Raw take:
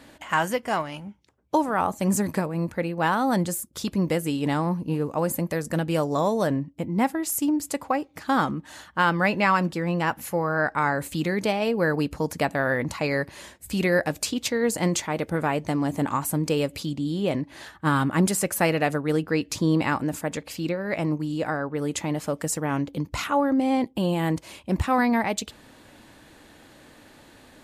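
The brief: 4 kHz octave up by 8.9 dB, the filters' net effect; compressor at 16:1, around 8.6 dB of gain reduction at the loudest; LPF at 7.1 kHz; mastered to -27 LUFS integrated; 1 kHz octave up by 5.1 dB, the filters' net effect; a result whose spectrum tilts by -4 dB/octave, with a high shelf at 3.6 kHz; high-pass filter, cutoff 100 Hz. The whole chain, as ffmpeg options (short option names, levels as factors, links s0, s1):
-af "highpass=100,lowpass=7100,equalizer=f=1000:t=o:g=5.5,highshelf=f=3600:g=7,equalizer=f=4000:t=o:g=7,acompressor=threshold=0.1:ratio=16,volume=0.944"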